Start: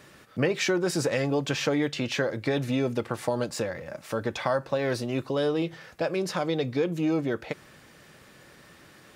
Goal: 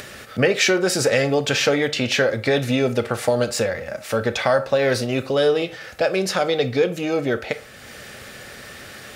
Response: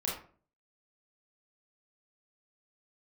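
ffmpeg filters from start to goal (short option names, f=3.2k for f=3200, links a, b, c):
-filter_complex "[0:a]equalizer=f=160:t=o:w=0.33:g=-11,equalizer=f=315:t=o:w=0.33:g=-10,equalizer=f=1k:t=o:w=0.33:g=-10,acompressor=mode=upward:threshold=-41dB:ratio=2.5,asplit=2[a][b];[1:a]atrim=start_sample=2205,lowshelf=f=260:g=-11.5[c];[b][c]afir=irnorm=-1:irlink=0,volume=-13dB[d];[a][d]amix=inputs=2:normalize=0,volume=8.5dB"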